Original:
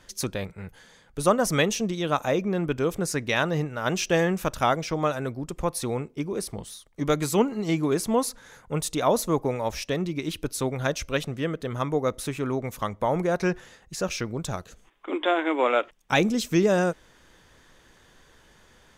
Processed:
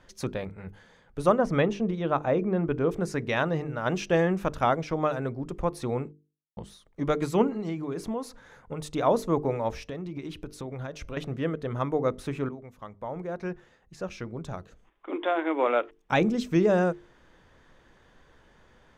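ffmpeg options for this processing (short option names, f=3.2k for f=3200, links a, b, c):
-filter_complex "[0:a]asettb=1/sr,asplit=3[a][b][c];[a]atrim=end=1.384[d];[b]atrim=start=1.38:end=2.91,asetpts=PTS-STARTPTS,afade=t=in:d=0.004:c=qsin,afade=t=out:st=1.526:d=0.004:c=qsin,aemphasis=mode=reproduction:type=75fm[e];[c]atrim=start=2.906[f];[d][e]acrossfade=d=0.004:c1=hsin:c2=qsin[g];[g][f]acrossfade=d=0.004:c1=qsin:c2=hsin,asplit=3[h][i][j];[h]afade=t=out:st=7.5:d=0.02[k];[i]acompressor=threshold=-27dB:ratio=6:attack=3.2:release=140:knee=1:detection=peak,afade=t=in:st=7.5:d=0.02,afade=t=out:st=8.79:d=0.02[l];[j]afade=t=in:st=8.79:d=0.02[m];[k][l][m]amix=inputs=3:normalize=0,asettb=1/sr,asplit=3[n][o][p];[n]atrim=end=9.704[q];[o]atrim=start=9.7:end=11.17,asetpts=PTS-STARTPTS,afade=t=in:d=0.004:c=qsin,afade=t=out:st=1.466:d=0.004:c=qsin,acompressor=threshold=-30dB:ratio=12:attack=3.2:release=140:knee=1:detection=peak[r];[p]atrim=start=11.166[s];[q][r]acrossfade=d=0.004:c1=hsin:c2=qsin[t];[t][s]acrossfade=d=0.004:c1=qsin:c2=hsin,asplit=4[u][v][w][x];[u]atrim=end=6.12,asetpts=PTS-STARTPTS,afade=t=out:st=6.116:d=0.004:c=hsin[y];[v]atrim=start=6.12:end=6.57,asetpts=PTS-STARTPTS,volume=0[z];[w]atrim=start=6.57:end=12.49,asetpts=PTS-STARTPTS,afade=t=in:d=0.004:c=hsin,afade=t=out:st=5.916:d=0.004:c=hsin:silence=0.177828[aa];[x]atrim=start=12.49,asetpts=PTS-STARTPTS,afade=t=in:d=3.66:silence=0.177828[ab];[y][z][aa][ab]concat=n=4:v=0:a=1,lowpass=f=1.6k:p=1,bandreject=f=50:t=h:w=6,bandreject=f=100:t=h:w=6,bandreject=f=150:t=h:w=6,bandreject=f=200:t=h:w=6,bandreject=f=250:t=h:w=6,bandreject=f=300:t=h:w=6,bandreject=f=350:t=h:w=6,bandreject=f=400:t=h:w=6,bandreject=f=450:t=h:w=6"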